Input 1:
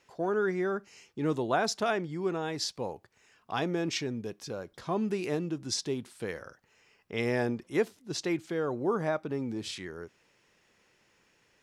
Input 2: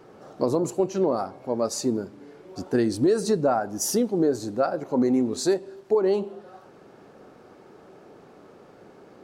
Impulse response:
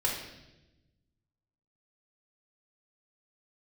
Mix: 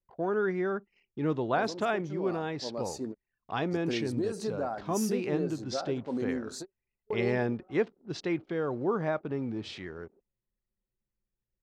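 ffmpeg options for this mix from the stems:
-filter_complex "[0:a]lowpass=3700,lowshelf=frequency=110:gain=4.5,volume=-0.5dB,asplit=2[link_01][link_02];[1:a]dynaudnorm=framelen=770:gausssize=3:maxgain=8dB,adelay=1150,volume=-18.5dB[link_03];[link_02]apad=whole_len=458079[link_04];[link_03][link_04]sidechaingate=range=-33dB:threshold=-59dB:ratio=16:detection=peak[link_05];[link_01][link_05]amix=inputs=2:normalize=0,anlmdn=0.00158"

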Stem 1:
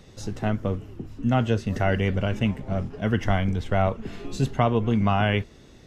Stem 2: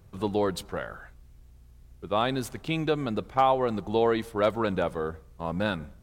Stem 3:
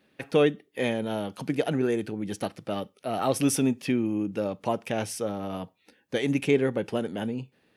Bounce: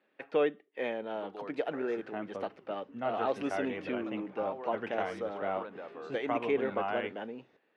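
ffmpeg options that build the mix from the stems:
ffmpeg -i stem1.wav -i stem2.wav -i stem3.wav -filter_complex "[0:a]adelay=1700,volume=-9dB[link_01];[1:a]alimiter=limit=-19.5dB:level=0:latency=1,adelay=1000,volume=-11.5dB[link_02];[2:a]volume=-4dB[link_03];[link_01][link_02][link_03]amix=inputs=3:normalize=0,highpass=400,lowpass=2200" out.wav

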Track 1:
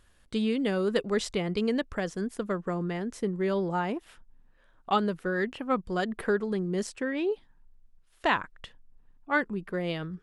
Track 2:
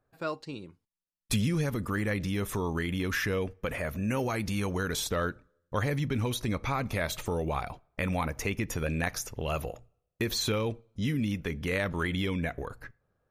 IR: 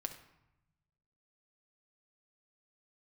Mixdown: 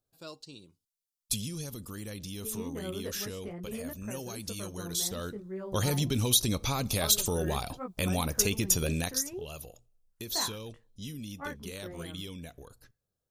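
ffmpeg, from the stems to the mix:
-filter_complex "[0:a]equalizer=frequency=3700:width=1.4:gain=-15,flanger=delay=16:depth=3.3:speed=2.6,adelay=2100,volume=-9dB[link_01];[1:a]tiltshelf=frequency=1100:gain=4.5,aexciter=amount=9:drive=6.1:freq=3000,volume=-3.5dB,afade=type=in:start_time=5.04:duration=0.73:silence=0.281838,afade=type=out:start_time=8.93:duration=0.32:silence=0.237137[link_02];[link_01][link_02]amix=inputs=2:normalize=0"

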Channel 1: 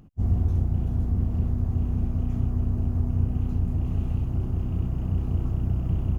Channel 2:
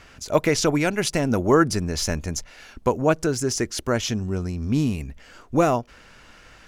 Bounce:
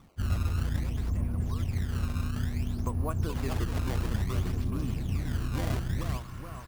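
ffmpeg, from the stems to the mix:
ffmpeg -i stem1.wav -i stem2.wav -filter_complex "[0:a]volume=-6dB,asplit=2[link_01][link_02];[link_02]volume=-11dB[link_03];[1:a]equalizer=frequency=1100:width=4.6:gain=15,acompressor=threshold=-30dB:ratio=4,volume=-5.5dB,afade=type=in:start_time=2.62:duration=0.41:silence=0.251189,asplit=2[link_04][link_05];[link_05]volume=-6dB[link_06];[link_03][link_06]amix=inputs=2:normalize=0,aecho=0:1:426|852|1278|1704|2130|2556|2982:1|0.49|0.24|0.118|0.0576|0.0282|0.0138[link_07];[link_01][link_04][link_07]amix=inputs=3:normalize=0,acrusher=samples=19:mix=1:aa=0.000001:lfo=1:lforange=30.4:lforate=0.58" out.wav

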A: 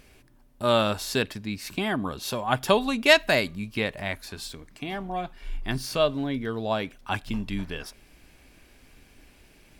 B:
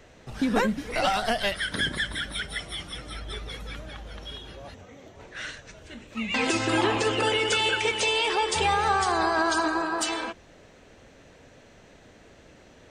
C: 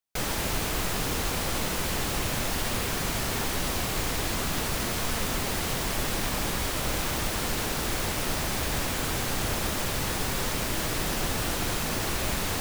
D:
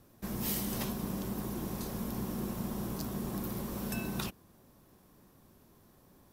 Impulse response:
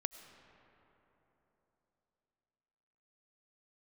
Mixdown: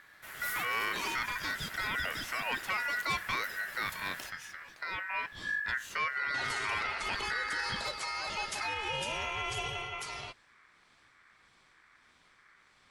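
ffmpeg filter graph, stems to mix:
-filter_complex "[0:a]highshelf=frequency=2500:gain=-10.5,asoftclip=type=tanh:threshold=-17.5dB,volume=-1dB[link_01];[1:a]acrossover=split=750[link_02][link_03];[link_02]aeval=exprs='val(0)*(1-0.5/2+0.5/2*cos(2*PI*1.6*n/s))':channel_layout=same[link_04];[link_03]aeval=exprs='val(0)*(1-0.5/2-0.5/2*cos(2*PI*1.6*n/s))':channel_layout=same[link_05];[link_04][link_05]amix=inputs=2:normalize=0,volume=-6dB[link_06];[3:a]highpass=300,volume=-2.5dB[link_07];[link_01][link_06][link_07]amix=inputs=3:normalize=0,aeval=exprs='val(0)*sin(2*PI*1700*n/s)':channel_layout=same,alimiter=limit=-24dB:level=0:latency=1:release=17"

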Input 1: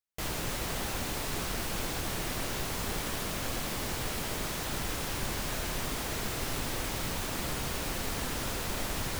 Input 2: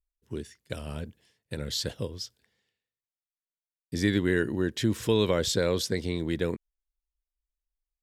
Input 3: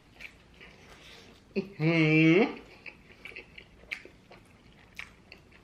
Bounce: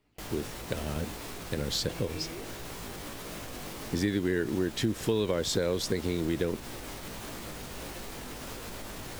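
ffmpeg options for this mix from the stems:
ffmpeg -i stem1.wav -i stem2.wav -i stem3.wav -filter_complex "[0:a]volume=2.5dB[link_01];[1:a]volume=1dB[link_02];[2:a]volume=-11.5dB[link_03];[link_01][link_03]amix=inputs=2:normalize=0,flanger=delay=17:depth=3.5:speed=1.5,alimiter=level_in=7.5dB:limit=-24dB:level=0:latency=1:release=219,volume=-7.5dB,volume=0dB[link_04];[link_02][link_04]amix=inputs=2:normalize=0,equalizer=frequency=360:width=0.71:gain=3.5,acompressor=threshold=-26dB:ratio=3" out.wav

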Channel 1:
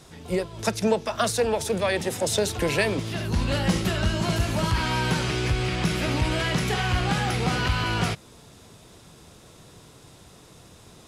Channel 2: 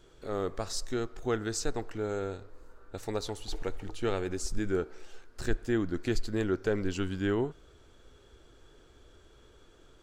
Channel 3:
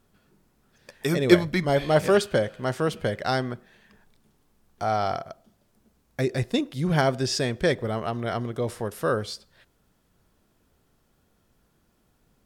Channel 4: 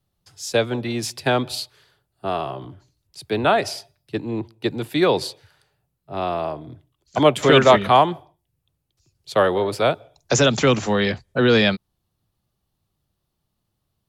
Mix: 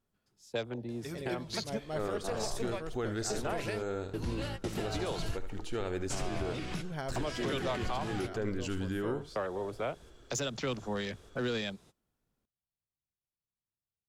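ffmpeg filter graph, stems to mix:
ffmpeg -i stem1.wav -i stem2.wav -i stem3.wav -i stem4.wav -filter_complex "[0:a]adelay=900,volume=-12.5dB[link_01];[1:a]alimiter=level_in=2dB:limit=-24dB:level=0:latency=1:release=39,volume=-2dB,adelay=1700,volume=0dB,asplit=2[link_02][link_03];[link_03]volume=-12dB[link_04];[2:a]volume=-17dB[link_05];[3:a]afwtdn=0.0316,acompressor=threshold=-30dB:ratio=1.5,adynamicequalizer=threshold=0.00794:dfrequency=3900:dqfactor=0.7:tfrequency=3900:tqfactor=0.7:attack=5:release=100:ratio=0.375:range=3.5:mode=boostabove:tftype=highshelf,volume=-10dB,asplit=2[link_06][link_07];[link_07]apad=whole_len=528049[link_08];[link_01][link_08]sidechaingate=range=-33dB:threshold=-56dB:ratio=16:detection=peak[link_09];[link_04]aecho=0:1:75:1[link_10];[link_09][link_02][link_05][link_06][link_10]amix=inputs=5:normalize=0,alimiter=limit=-24dB:level=0:latency=1:release=244" out.wav

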